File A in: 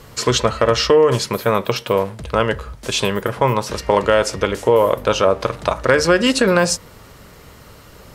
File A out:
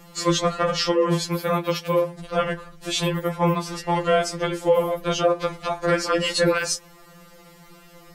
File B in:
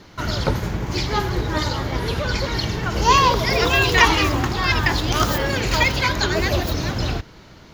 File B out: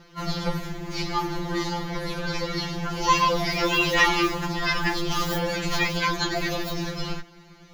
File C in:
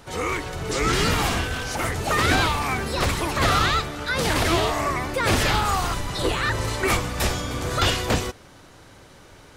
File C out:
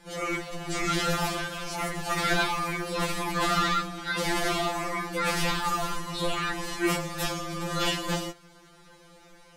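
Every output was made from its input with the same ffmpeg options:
-af "aeval=exprs='val(0)*sin(2*PI*37*n/s)':c=same,afftfilt=real='re*2.83*eq(mod(b,8),0)':imag='im*2.83*eq(mod(b,8),0)':win_size=2048:overlap=0.75"

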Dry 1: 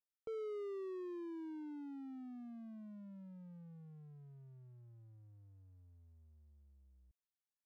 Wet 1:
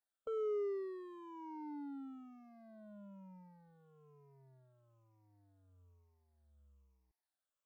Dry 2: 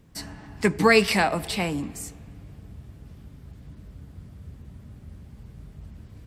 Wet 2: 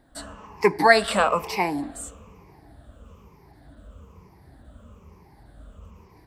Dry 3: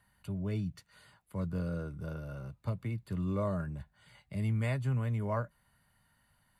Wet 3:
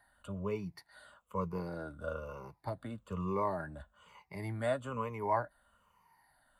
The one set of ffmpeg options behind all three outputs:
-af "afftfilt=real='re*pow(10,14/40*sin(2*PI*(0.79*log(max(b,1)*sr/1024/100)/log(2)-(-1.1)*(pts-256)/sr)))':imag='im*pow(10,14/40*sin(2*PI*(0.79*log(max(b,1)*sr/1024/100)/log(2)-(-1.1)*(pts-256)/sr)))':win_size=1024:overlap=0.75,equalizer=f=125:t=o:w=1:g=-9,equalizer=f=500:t=o:w=1:g=5,equalizer=f=1k:t=o:w=1:g=11,volume=-4.5dB"

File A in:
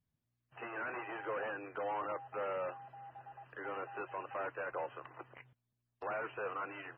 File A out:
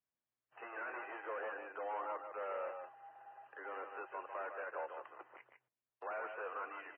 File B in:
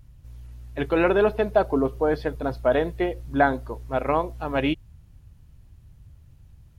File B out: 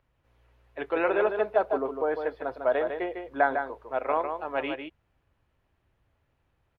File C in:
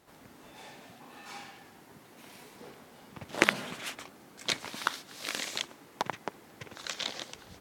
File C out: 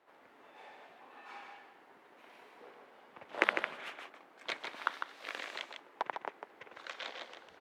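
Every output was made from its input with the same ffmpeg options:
-filter_complex "[0:a]acrossover=split=350 3000:gain=0.0794 1 0.112[a][b][c];[a][b][c]amix=inputs=3:normalize=0,asplit=2[d][e];[e]aecho=0:1:152:0.473[f];[d][f]amix=inputs=2:normalize=0,volume=-3dB"

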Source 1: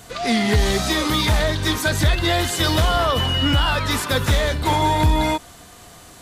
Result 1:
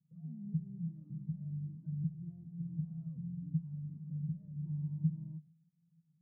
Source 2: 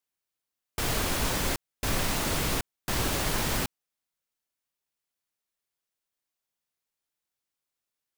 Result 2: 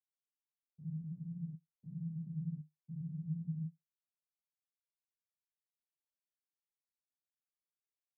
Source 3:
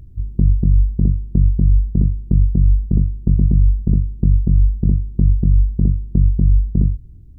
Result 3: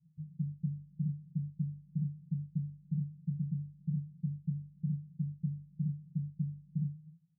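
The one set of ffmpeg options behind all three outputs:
-af "agate=range=-14dB:threshold=-36dB:ratio=16:detection=peak,alimiter=limit=-14dB:level=0:latency=1:release=185,asuperpass=centerf=160:order=4:qfactor=8,volume=4dB"

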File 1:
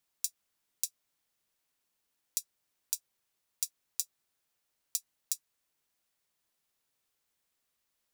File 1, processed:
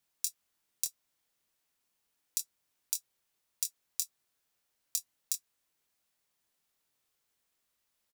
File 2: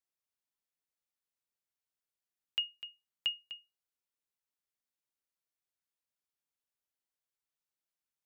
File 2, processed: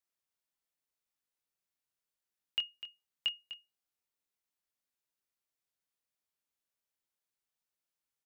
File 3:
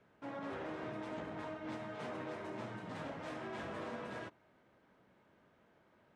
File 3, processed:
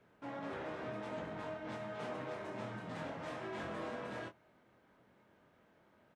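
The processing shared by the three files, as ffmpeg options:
-filter_complex "[0:a]asplit=2[a][b];[b]adelay=24,volume=-7dB[c];[a][c]amix=inputs=2:normalize=0"

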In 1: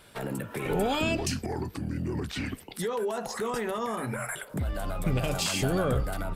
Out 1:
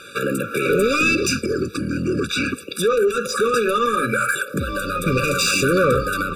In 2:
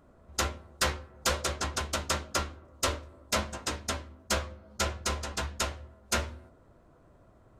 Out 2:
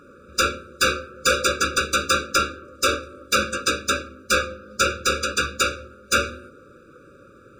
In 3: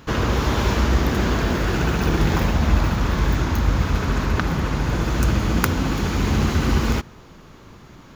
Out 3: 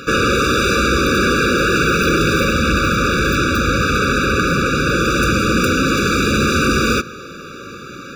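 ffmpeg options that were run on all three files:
-filter_complex "[0:a]asplit=2[a][b];[b]highpass=f=720:p=1,volume=30dB,asoftclip=type=tanh:threshold=-1dB[c];[a][c]amix=inputs=2:normalize=0,lowpass=f=5.5k:p=1,volume=-6dB,bandreject=f=3k:w=11,afftfilt=real='re*eq(mod(floor(b*sr/1024/570),2),0)':imag='im*eq(mod(floor(b*sr/1024/570),2),0)':win_size=1024:overlap=0.75,volume=-3.5dB"

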